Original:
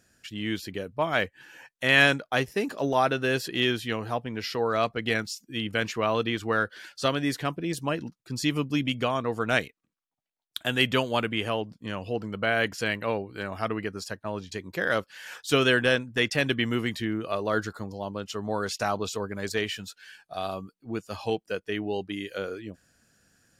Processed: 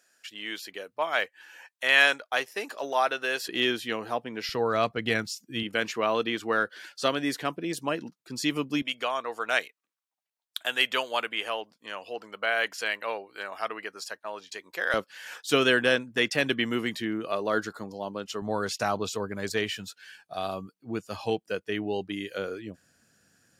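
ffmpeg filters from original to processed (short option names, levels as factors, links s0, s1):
-af "asetnsamples=n=441:p=0,asendcmd='3.49 highpass f 250;4.49 highpass f 90;5.63 highpass f 230;8.82 highpass f 620;14.94 highpass f 190;18.42 highpass f 93',highpass=590"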